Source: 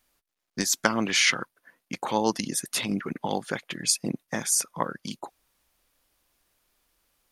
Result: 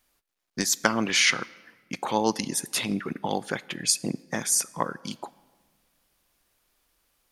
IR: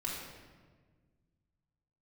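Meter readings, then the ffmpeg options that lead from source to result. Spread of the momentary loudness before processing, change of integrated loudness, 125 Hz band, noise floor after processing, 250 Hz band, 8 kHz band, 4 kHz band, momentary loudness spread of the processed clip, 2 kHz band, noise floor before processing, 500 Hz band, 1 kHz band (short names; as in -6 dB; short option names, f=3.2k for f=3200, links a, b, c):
17 LU, +0.5 dB, 0.0 dB, -72 dBFS, 0.0 dB, +0.5 dB, +0.5 dB, 17 LU, +0.5 dB, -81 dBFS, +0.5 dB, +0.5 dB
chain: -filter_complex "[0:a]asplit=2[a][b];[1:a]atrim=start_sample=2205,lowshelf=f=280:g=-11.5[c];[b][c]afir=irnorm=-1:irlink=0,volume=-19dB[d];[a][d]amix=inputs=2:normalize=0"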